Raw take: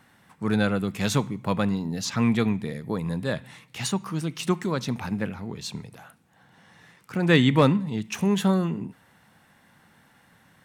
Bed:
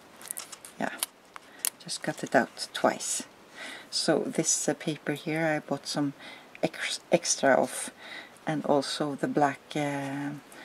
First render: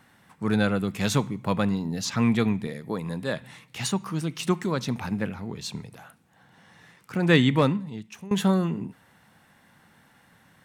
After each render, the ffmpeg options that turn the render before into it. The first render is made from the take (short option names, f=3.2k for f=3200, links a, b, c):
-filter_complex "[0:a]asettb=1/sr,asplit=3[a][b][c];[a]atrim=end=2.674[d];[b]atrim=start=2.67:end=3.42,asetpts=PTS-STARTPTS,afade=t=in:d=0.004:c=qsin,afade=t=out:st=0.746:d=0.004:c=qsin,highpass=f=190:p=1[e];[c]atrim=start=3.416[f];[d][e]acrossfade=d=0.004:c1=hsin:c2=qsin[g];[g][f]acrossfade=d=0.004:c1=qsin:c2=hsin,asplit=2[h][i];[h]atrim=end=8.31,asetpts=PTS-STARTPTS,afade=t=out:st=7.33:d=0.98:silence=0.0944061[j];[i]atrim=start=8.31,asetpts=PTS-STARTPTS,afade=t=in:d=0.004:c=hsin:silence=0.0944061[k];[j][k]concat=n=2:v=0:a=1"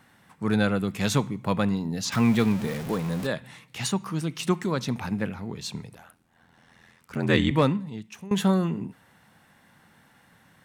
-filter_complex "[0:a]asettb=1/sr,asplit=3[a][b][c];[a]atrim=end=2.124[d];[b]atrim=start=2.12:end=3.27,asetpts=PTS-STARTPTS,afade=t=in:d=0.004:c=qsin,afade=t=out:st=1.146:d=0.004:c=qsin,aeval=exprs='val(0)+0.5*0.0299*sgn(val(0))':c=same[e];[c]atrim=start=3.266[f];[d][e]acrossfade=d=0.004:c1=hsin:c2=qsin[g];[g][f]acrossfade=d=0.004:c1=qsin:c2=hsin,asettb=1/sr,asplit=3[h][i][j];[h]atrim=end=5.944[k];[i]atrim=start=5.94:end=7.51,asetpts=PTS-STARTPTS,afade=t=in:d=0.004:c=qsin,afade=t=out:st=1.566:d=0.004:c=qsin,aeval=exprs='val(0)*sin(2*PI*42*n/s)':c=same[l];[j]atrim=start=7.506[m];[k][l]acrossfade=d=0.004:c1=hsin:c2=qsin[n];[n][m]acrossfade=d=0.004:c1=qsin:c2=hsin"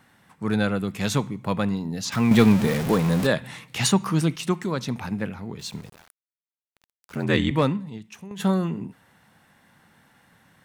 -filter_complex "[0:a]asettb=1/sr,asplit=3[a][b][c];[a]atrim=end=2.314[d];[b]atrim=start=2.31:end=4.36,asetpts=PTS-STARTPTS,afade=t=in:d=0.004:c=qsin,afade=t=out:st=2.046:d=0.004:c=qsin,acontrast=88[e];[c]atrim=start=4.356[f];[d][e]acrossfade=d=0.004:c1=hsin:c2=qsin[g];[g][f]acrossfade=d=0.004:c1=qsin:c2=hsin,asettb=1/sr,asplit=3[h][i][j];[h]atrim=end=5.594[k];[i]atrim=start=5.59:end=7.24,asetpts=PTS-STARTPTS,afade=t=in:d=0.004:c=qsin,afade=t=out:st=1.646:d=0.004:c=qsin,aeval=exprs='val(0)*gte(abs(val(0)),0.00596)':c=same[l];[j]atrim=start=7.236[m];[k][l]acrossfade=d=0.004:c1=hsin:c2=qsin[n];[n][m]acrossfade=d=0.004:c1=qsin:c2=hsin,asplit=3[o][p][q];[o]afade=t=out:st=7.97:d=0.02[r];[p]acompressor=threshold=-33dB:ratio=16:attack=3.2:release=140:knee=1:detection=peak,afade=t=in:st=7.97:d=0.02,afade=t=out:st=8.39:d=0.02[s];[q]afade=t=in:st=8.39:d=0.02[t];[r][s][t]amix=inputs=3:normalize=0"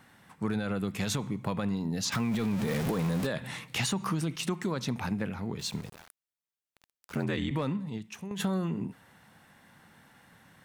-af "alimiter=limit=-15.5dB:level=0:latency=1:release=34,acompressor=threshold=-27dB:ratio=6"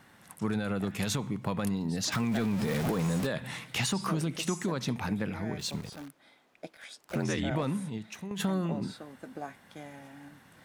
-filter_complex "[1:a]volume=-16dB[a];[0:a][a]amix=inputs=2:normalize=0"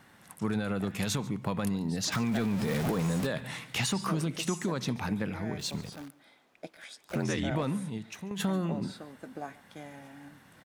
-af "aecho=1:1:141:0.0891"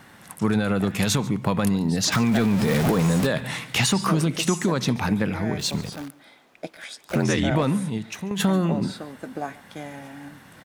-af "volume=9dB"